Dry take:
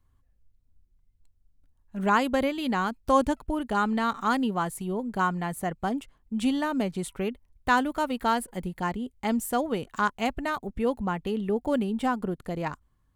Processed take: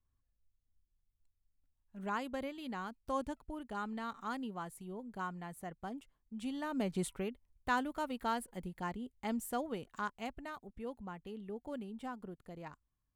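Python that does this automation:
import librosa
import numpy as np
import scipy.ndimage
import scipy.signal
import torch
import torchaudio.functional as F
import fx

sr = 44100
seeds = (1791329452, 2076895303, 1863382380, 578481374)

y = fx.gain(x, sr, db=fx.line((6.49, -15.0), (7.02, -3.5), (7.29, -10.5), (9.55, -10.5), (10.68, -17.0)))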